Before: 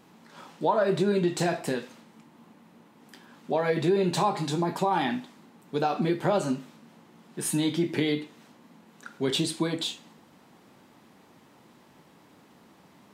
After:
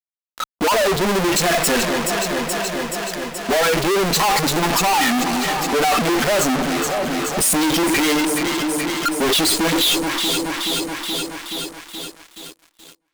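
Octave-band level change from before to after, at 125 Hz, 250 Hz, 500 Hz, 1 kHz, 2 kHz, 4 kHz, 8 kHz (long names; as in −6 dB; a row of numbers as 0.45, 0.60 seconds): +4.5, +8.5, +8.0, +11.0, +16.5, +16.0, +18.5 decibels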